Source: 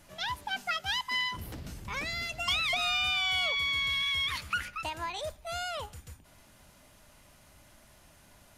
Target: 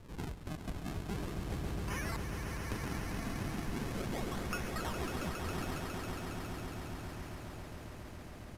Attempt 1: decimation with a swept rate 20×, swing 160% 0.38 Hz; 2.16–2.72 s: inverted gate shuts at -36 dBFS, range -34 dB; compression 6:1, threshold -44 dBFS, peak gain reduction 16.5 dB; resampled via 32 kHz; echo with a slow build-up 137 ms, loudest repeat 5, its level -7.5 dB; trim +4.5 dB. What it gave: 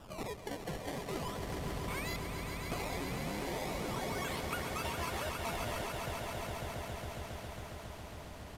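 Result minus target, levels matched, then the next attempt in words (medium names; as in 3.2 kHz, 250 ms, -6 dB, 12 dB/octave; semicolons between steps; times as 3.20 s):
decimation with a swept rate: distortion -8 dB
decimation with a swept rate 54×, swing 160% 0.38 Hz; 2.16–2.72 s: inverted gate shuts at -36 dBFS, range -34 dB; compression 6:1, threshold -44 dBFS, peak gain reduction 17.5 dB; resampled via 32 kHz; echo with a slow build-up 137 ms, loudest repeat 5, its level -7.5 dB; trim +4.5 dB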